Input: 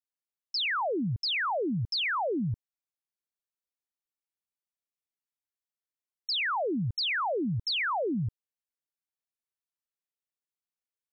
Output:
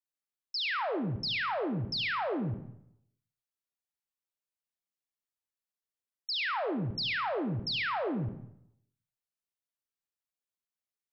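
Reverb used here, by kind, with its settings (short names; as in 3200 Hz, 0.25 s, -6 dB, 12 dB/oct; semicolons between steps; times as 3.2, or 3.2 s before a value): digital reverb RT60 0.76 s, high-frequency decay 0.8×, pre-delay 20 ms, DRR 7 dB; gain -3.5 dB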